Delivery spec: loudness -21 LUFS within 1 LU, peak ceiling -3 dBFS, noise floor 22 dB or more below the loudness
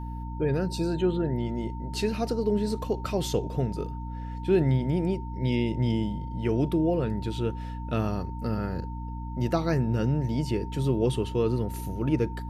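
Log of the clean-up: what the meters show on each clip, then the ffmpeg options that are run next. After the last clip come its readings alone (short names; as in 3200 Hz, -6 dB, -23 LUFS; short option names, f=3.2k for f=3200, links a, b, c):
hum 60 Hz; harmonics up to 300 Hz; hum level -33 dBFS; steady tone 910 Hz; tone level -42 dBFS; loudness -28.5 LUFS; peak -12.0 dBFS; loudness target -21.0 LUFS
-> -af "bandreject=f=60:t=h:w=6,bandreject=f=120:t=h:w=6,bandreject=f=180:t=h:w=6,bandreject=f=240:t=h:w=6,bandreject=f=300:t=h:w=6"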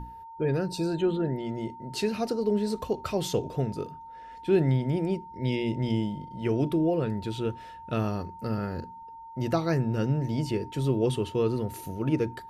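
hum none; steady tone 910 Hz; tone level -42 dBFS
-> -af "bandreject=f=910:w=30"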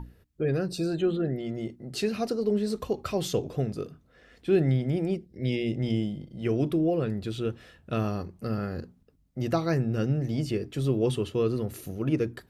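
steady tone none; loudness -29.0 LUFS; peak -12.5 dBFS; loudness target -21.0 LUFS
-> -af "volume=8dB"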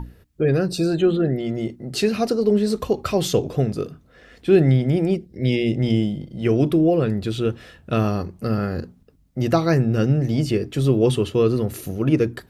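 loudness -21.0 LUFS; peak -4.5 dBFS; noise floor -54 dBFS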